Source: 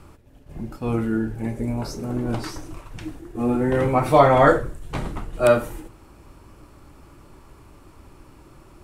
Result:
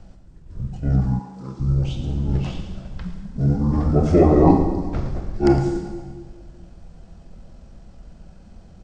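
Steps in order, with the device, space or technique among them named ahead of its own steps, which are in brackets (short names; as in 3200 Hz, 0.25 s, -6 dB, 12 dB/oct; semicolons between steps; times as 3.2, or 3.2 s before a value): monster voice (pitch shift -9.5 st; low shelf 220 Hz +8 dB; echo 0.11 s -13.5 dB; reverb RT60 1.6 s, pre-delay 25 ms, DRR 6 dB); 1.18–1.59 HPF 490 Hz -> 220 Hz 12 dB/oct; gain -2.5 dB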